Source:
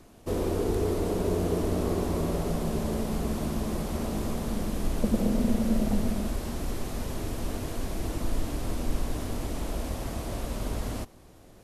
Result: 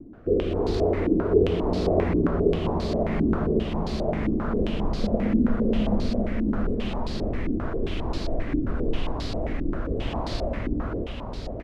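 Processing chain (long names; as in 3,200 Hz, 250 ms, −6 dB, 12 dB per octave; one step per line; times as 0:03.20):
in parallel at +3 dB: downward compressor, threshold −40 dBFS, peak gain reduction 19.5 dB
on the sum: rotating-speaker cabinet horn 0.85 Hz
repeating echo 664 ms, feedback 41%, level −4 dB
low-pass on a step sequencer 7.5 Hz 300–4,400 Hz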